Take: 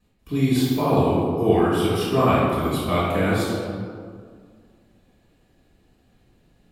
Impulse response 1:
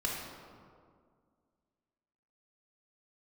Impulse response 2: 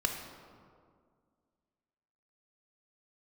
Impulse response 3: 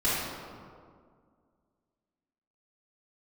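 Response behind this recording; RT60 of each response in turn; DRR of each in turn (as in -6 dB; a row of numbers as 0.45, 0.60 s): 3; 2.0, 2.0, 2.0 s; -2.5, 3.5, -10.0 dB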